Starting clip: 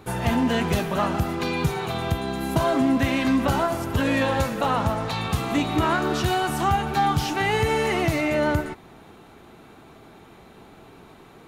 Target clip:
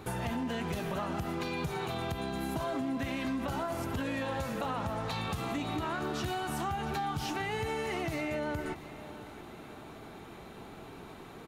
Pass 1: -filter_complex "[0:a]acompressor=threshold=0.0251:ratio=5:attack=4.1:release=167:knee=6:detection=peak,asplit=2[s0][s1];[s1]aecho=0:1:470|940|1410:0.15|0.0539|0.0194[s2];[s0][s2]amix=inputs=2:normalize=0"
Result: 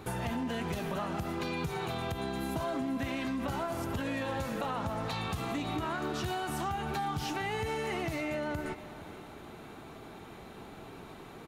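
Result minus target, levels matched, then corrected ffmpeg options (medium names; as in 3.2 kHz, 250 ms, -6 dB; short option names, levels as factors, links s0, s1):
echo 210 ms early
-filter_complex "[0:a]acompressor=threshold=0.0251:ratio=5:attack=4.1:release=167:knee=6:detection=peak,asplit=2[s0][s1];[s1]aecho=0:1:680|1360|2040:0.15|0.0539|0.0194[s2];[s0][s2]amix=inputs=2:normalize=0"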